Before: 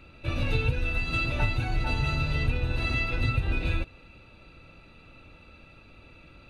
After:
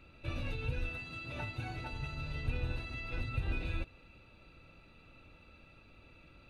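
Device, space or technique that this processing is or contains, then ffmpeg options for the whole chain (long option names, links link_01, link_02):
de-esser from a sidechain: -filter_complex "[0:a]asplit=2[link_01][link_02];[link_02]highpass=frequency=4500:width=0.5412,highpass=frequency=4500:width=1.3066,apad=whole_len=286465[link_03];[link_01][link_03]sidechaincompress=threshold=-50dB:ratio=8:attack=2.9:release=90,asettb=1/sr,asplit=3[link_04][link_05][link_06];[link_04]atrim=end=0.894[link_07];[link_05]atrim=start=0.89:end=1.91,asetpts=PTS-STARTPTS,afade=type=in:duration=0.004:curve=qsin,afade=type=out:start_time=1.016:duration=0.004:curve=qsin,highpass=85[link_08];[link_06]atrim=start=1.906[link_09];[link_07][link_08]acrossfade=duration=0.004:curve1=hsin:curve2=qsin[link_10];[link_10][link_09]acrossfade=duration=0.004:curve1=qsin:curve2=hsin,volume=-7dB"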